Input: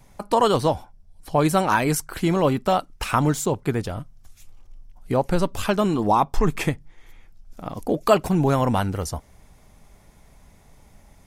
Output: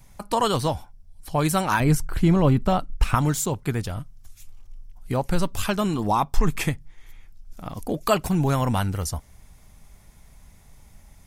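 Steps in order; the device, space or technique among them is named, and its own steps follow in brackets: 1.8–3.15 tilt -2.5 dB/oct; smiley-face EQ (low shelf 170 Hz +3 dB; bell 440 Hz -6 dB 2.3 oct; high shelf 7700 Hz +5 dB)

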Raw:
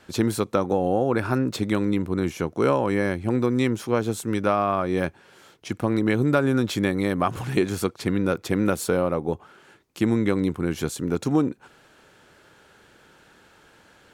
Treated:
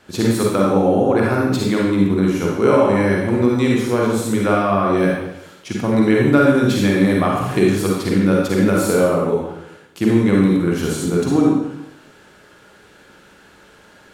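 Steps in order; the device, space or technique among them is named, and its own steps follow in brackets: bathroom (reverb RT60 0.90 s, pre-delay 39 ms, DRR -3.5 dB); gain +1.5 dB

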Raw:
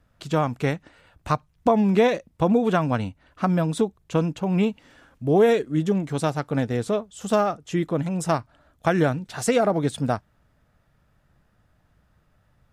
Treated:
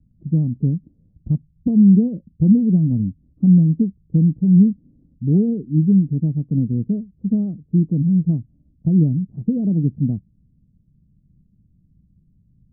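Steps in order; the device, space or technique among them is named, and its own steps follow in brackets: the neighbour's flat through the wall (LPF 270 Hz 24 dB/oct; bell 180 Hz +6.5 dB 0.73 oct); gain +5 dB

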